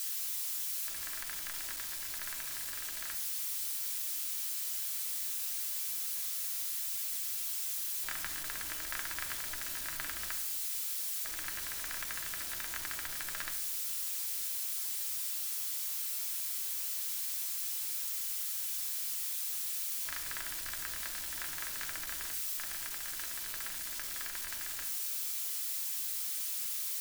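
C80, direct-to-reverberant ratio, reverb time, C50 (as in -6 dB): 13.0 dB, 2.0 dB, 0.80 s, 9.5 dB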